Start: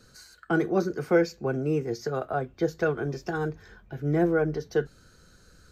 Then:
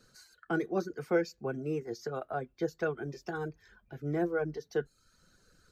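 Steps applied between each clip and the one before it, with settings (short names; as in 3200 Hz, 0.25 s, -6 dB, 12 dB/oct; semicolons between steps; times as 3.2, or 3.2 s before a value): reverb removal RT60 0.6 s; bell 62 Hz -7 dB 1.7 oct; gain -6 dB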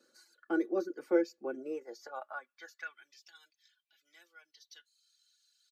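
high-pass sweep 360 Hz -> 3400 Hz, 1.52–3.29; comb 3.5 ms, depth 63%; gain -7 dB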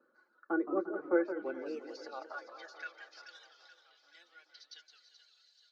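split-band echo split 550 Hz, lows 0.177 s, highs 0.43 s, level -12 dB; low-pass sweep 1200 Hz -> 4500 Hz, 1.1–1.63; warbling echo 0.174 s, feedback 50%, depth 205 cents, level -10 dB; gain -2.5 dB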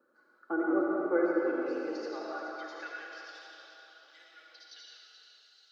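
reverb RT60 2.5 s, pre-delay 35 ms, DRR -3 dB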